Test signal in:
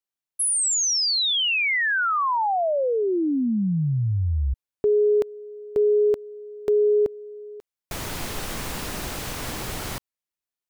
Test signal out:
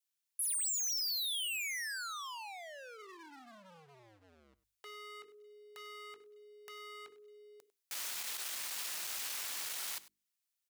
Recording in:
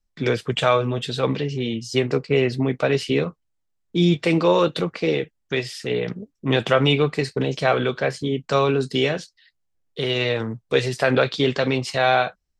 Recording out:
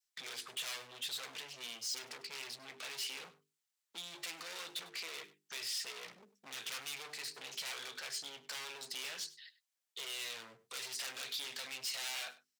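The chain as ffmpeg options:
-filter_complex "[0:a]bandreject=f=50:t=h:w=6,bandreject=f=100:t=h:w=6,bandreject=f=150:t=h:w=6,bandreject=f=200:t=h:w=6,bandreject=f=250:t=h:w=6,bandreject=f=300:t=h:w=6,bandreject=f=350:t=h:w=6,bandreject=f=400:t=h:w=6,bandreject=f=450:t=h:w=6,adynamicequalizer=threshold=0.0251:dfrequency=730:dqfactor=0.73:tfrequency=730:tqfactor=0.73:attack=5:release=100:ratio=0.4:range=3.5:mode=cutabove:tftype=bell,acrossover=split=300|4200[a][b][c];[b]aeval=exprs='0.0841*(abs(mod(val(0)/0.0841+3,4)-2)-1)':c=same[d];[a][d][c]amix=inputs=3:normalize=0,alimiter=limit=-19.5dB:level=0:latency=1:release=11,asplit=2[e][f];[f]acompressor=threshold=-39dB:ratio=4:release=77:detection=rms,volume=2.5dB[g];[e][g]amix=inputs=2:normalize=0,asoftclip=type=hard:threshold=-29.5dB,asplit=2[h][i];[i]highpass=f=720:p=1,volume=2dB,asoftclip=type=tanh:threshold=-29.5dB[j];[h][j]amix=inputs=2:normalize=0,lowpass=f=3.1k:p=1,volume=-6dB,aderivative,aecho=1:1:99:0.126,volume=3.5dB"

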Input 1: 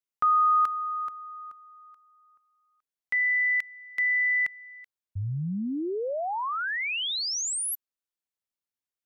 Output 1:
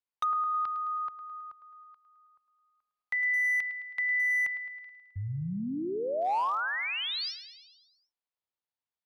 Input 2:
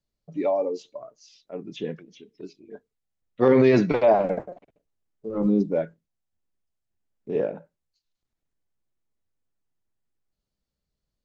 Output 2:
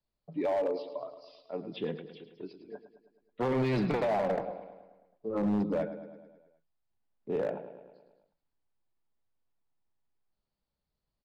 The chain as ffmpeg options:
-filter_complex "[0:a]aresample=11025,aresample=44100,acrossover=split=180|2800[a][b][c];[b]acompressor=threshold=-30dB:ratio=10:attack=29:release=25:knee=1:detection=peak[d];[a][d][c]amix=inputs=3:normalize=0,equalizer=f=880:w=1.4:g=7,asplit=2[e][f];[f]aecho=0:1:107|214|321|428|535|642|749:0.251|0.148|0.0874|0.0516|0.0304|0.018|0.0106[g];[e][g]amix=inputs=2:normalize=0,volume=20.5dB,asoftclip=hard,volume=-20.5dB,volume=-4dB"

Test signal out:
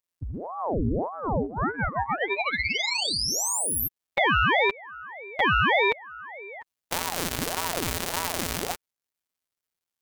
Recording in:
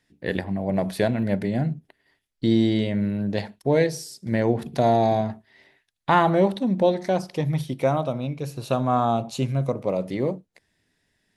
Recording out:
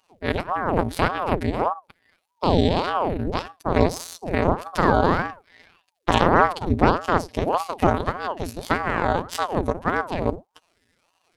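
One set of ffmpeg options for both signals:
-filter_complex "[0:a]afftfilt=real='hypot(re,im)*cos(PI*b)':imag='0':win_size=1024:overlap=0.75,asplit=2[a][b];[b]acompressor=threshold=-37dB:ratio=16,volume=2dB[c];[a][c]amix=inputs=2:normalize=0,aeval=exprs='0.75*(cos(1*acos(clip(val(0)/0.75,-1,1)))-cos(1*PI/2))+0.0119*(cos(3*acos(clip(val(0)/0.75,-1,1)))-cos(3*PI/2))+0.0944*(cos(5*acos(clip(val(0)/0.75,-1,1)))-cos(5*PI/2))+0.299*(cos(6*acos(clip(val(0)/0.75,-1,1)))-cos(6*PI/2))':c=same,aeval=exprs='val(0)*sin(2*PI*520*n/s+520*0.9/1.7*sin(2*PI*1.7*n/s))':c=same,volume=-1.5dB"

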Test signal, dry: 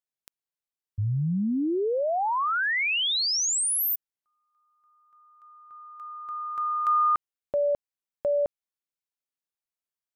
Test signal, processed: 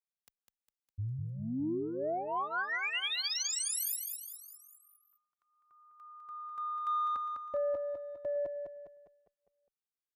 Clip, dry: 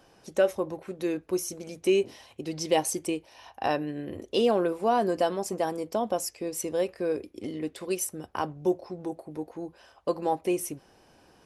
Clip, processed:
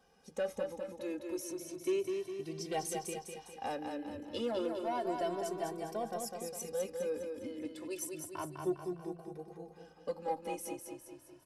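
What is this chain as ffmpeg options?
-filter_complex "[0:a]asoftclip=type=tanh:threshold=-16.5dB,asplit=2[a][b];[b]aecho=0:1:203|406|609|812|1015|1218:0.562|0.281|0.141|0.0703|0.0351|0.0176[c];[a][c]amix=inputs=2:normalize=0,asplit=2[d][e];[e]adelay=2.1,afreqshift=0.31[f];[d][f]amix=inputs=2:normalize=1,volume=-7dB"

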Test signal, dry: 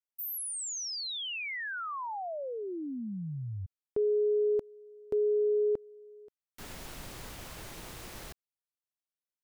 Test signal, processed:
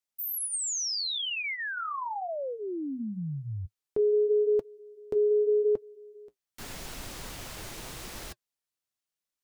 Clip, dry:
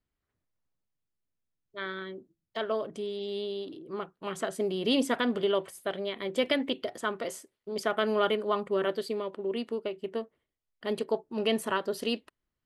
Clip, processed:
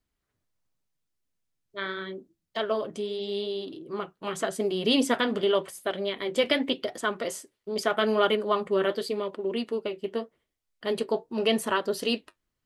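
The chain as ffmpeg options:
-af "equalizer=f=6k:w=0.58:g=3,flanger=delay=2.6:depth=7.9:regen=-57:speed=0.85:shape=triangular,volume=7dB"

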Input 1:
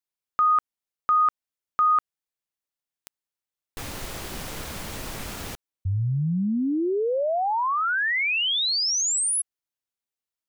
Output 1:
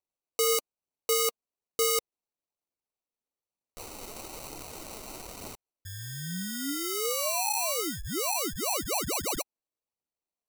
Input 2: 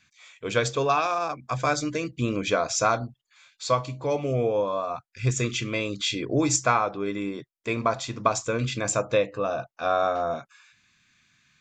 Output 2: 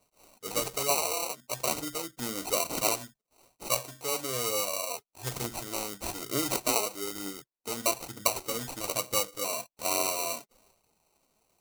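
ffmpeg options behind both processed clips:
-af "acrusher=samples=26:mix=1:aa=0.000001,bass=f=250:g=-7,treble=f=4k:g=13,aphaser=in_gain=1:out_gain=1:delay=4.9:decay=0.32:speed=1.1:type=triangular,volume=-8.5dB"

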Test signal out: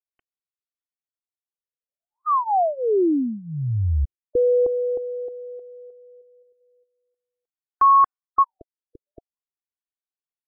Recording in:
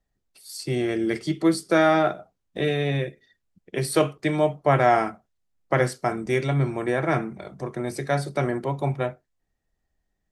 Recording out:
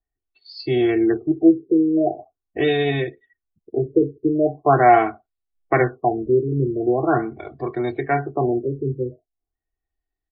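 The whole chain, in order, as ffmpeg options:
-af "afftdn=nr=15:nf=-46,aecho=1:1:2.7:0.86,afftfilt=real='re*lt(b*sr/1024,500*pow(5200/500,0.5+0.5*sin(2*PI*0.42*pts/sr)))':imag='im*lt(b*sr/1024,500*pow(5200/500,0.5+0.5*sin(2*PI*0.42*pts/sr)))':win_size=1024:overlap=0.75,volume=2.5dB"

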